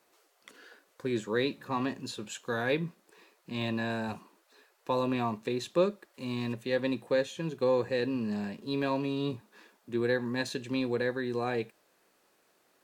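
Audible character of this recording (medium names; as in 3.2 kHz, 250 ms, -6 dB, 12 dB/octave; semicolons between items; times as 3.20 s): noise floor -70 dBFS; spectral tilt -4.5 dB/octave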